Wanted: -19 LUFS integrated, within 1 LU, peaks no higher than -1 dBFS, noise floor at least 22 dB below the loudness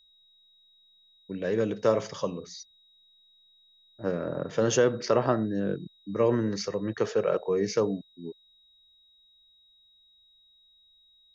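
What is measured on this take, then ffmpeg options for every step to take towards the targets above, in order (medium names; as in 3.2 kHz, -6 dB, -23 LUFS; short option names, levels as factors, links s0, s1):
steady tone 3.8 kHz; tone level -59 dBFS; loudness -28.0 LUFS; peak level -11.0 dBFS; loudness target -19.0 LUFS
-> -af "bandreject=f=3800:w=30"
-af "volume=2.82"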